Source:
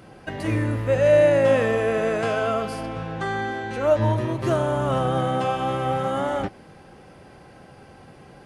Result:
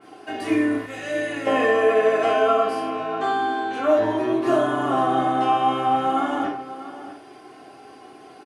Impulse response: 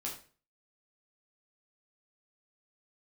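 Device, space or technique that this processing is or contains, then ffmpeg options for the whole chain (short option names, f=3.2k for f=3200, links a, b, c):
microphone above a desk: -filter_complex "[0:a]highpass=260,aecho=1:1:2.8:0.65[a];[1:a]atrim=start_sample=2205[b];[a][b]afir=irnorm=-1:irlink=0,asettb=1/sr,asplit=3[c][d][e];[c]atrim=end=0.864[f];[d]atrim=start=0.86:end=1.47,asetpts=PTS-STARTPTS,afade=t=in:d=0.004:c=qsin,afade=t=out:st=0.606:d=0.004:c=qsin,equalizer=f=520:w=0.43:g=-13.5[g];[e]atrim=start=1.466[h];[f][g]acrossfade=d=0.004:c1=hsin:c2=qsin[i];[i][h]acrossfade=d=0.004:c1=qsin:c2=hsin,asplit=2[j][k];[k]adelay=641.4,volume=-13dB,highshelf=f=4k:g=-14.4[l];[j][l]amix=inputs=2:normalize=0,adynamicequalizer=threshold=0.00794:dfrequency=3800:dqfactor=0.7:tfrequency=3800:tqfactor=0.7:attack=5:release=100:ratio=0.375:range=3:mode=cutabove:tftype=highshelf,volume=1.5dB"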